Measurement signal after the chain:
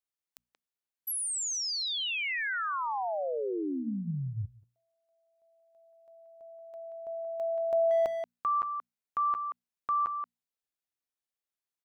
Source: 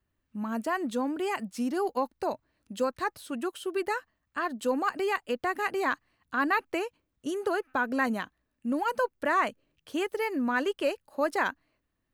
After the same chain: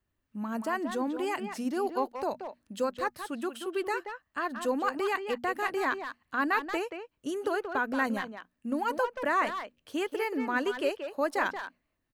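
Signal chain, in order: notches 60/120/180/240 Hz; speakerphone echo 0.18 s, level -7 dB; gain -1.5 dB

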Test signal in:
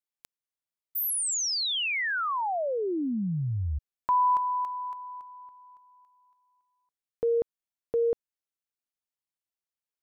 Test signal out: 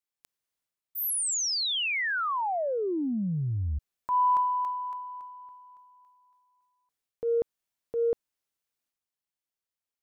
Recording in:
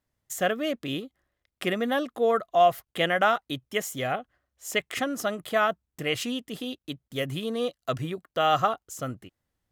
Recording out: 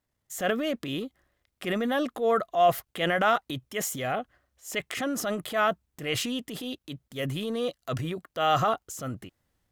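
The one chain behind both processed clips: transient shaper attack -6 dB, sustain +6 dB

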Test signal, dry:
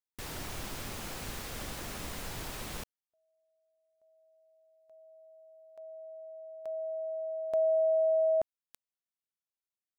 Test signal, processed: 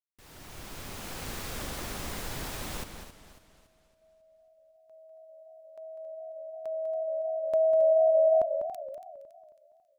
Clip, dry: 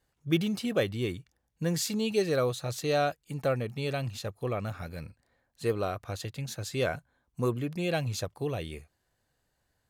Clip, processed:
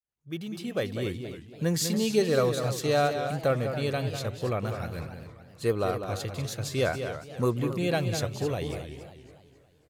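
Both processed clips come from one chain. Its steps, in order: opening faded in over 1.40 s; dynamic EQ 2700 Hz, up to -3 dB, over -51 dBFS, Q 4.3; outdoor echo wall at 34 m, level -8 dB; warbling echo 0.276 s, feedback 44%, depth 203 cents, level -12 dB; gain +2.5 dB

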